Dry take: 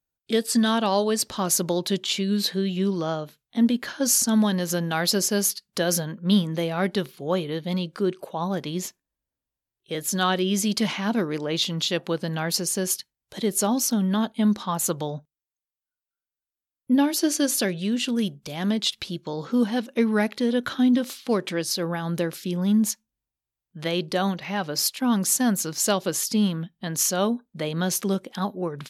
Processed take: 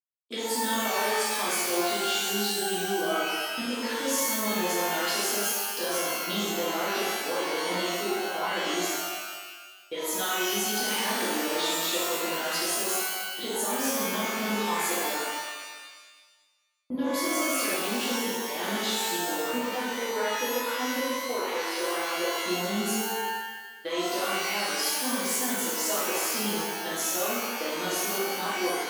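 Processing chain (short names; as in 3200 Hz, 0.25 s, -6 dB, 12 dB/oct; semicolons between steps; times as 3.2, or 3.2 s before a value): steep high-pass 250 Hz 36 dB/oct; gate -38 dBFS, range -29 dB; 19.84–22.38 three-band isolator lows -21 dB, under 320 Hz, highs -15 dB, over 2300 Hz; compressor 4:1, threshold -31 dBFS, peak gain reduction 12.5 dB; shimmer reverb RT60 1.3 s, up +12 st, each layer -2 dB, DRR -10 dB; gain -7 dB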